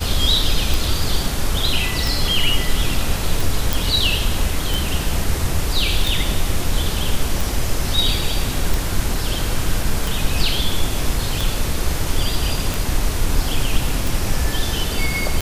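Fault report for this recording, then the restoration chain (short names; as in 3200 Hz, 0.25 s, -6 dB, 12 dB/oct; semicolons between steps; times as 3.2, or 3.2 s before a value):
tick 45 rpm
3.73 pop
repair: de-click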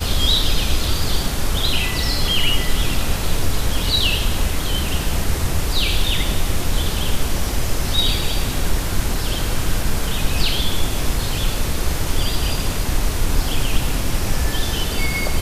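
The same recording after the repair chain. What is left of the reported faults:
none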